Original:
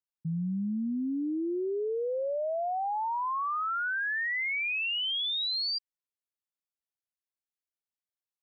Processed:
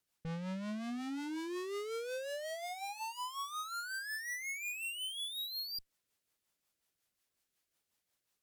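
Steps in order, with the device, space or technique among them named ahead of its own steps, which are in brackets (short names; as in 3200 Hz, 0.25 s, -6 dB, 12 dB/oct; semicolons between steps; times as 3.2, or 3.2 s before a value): overdriven rotary cabinet (tube stage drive 56 dB, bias 0.6; rotary speaker horn 5.5 Hz); gain +18 dB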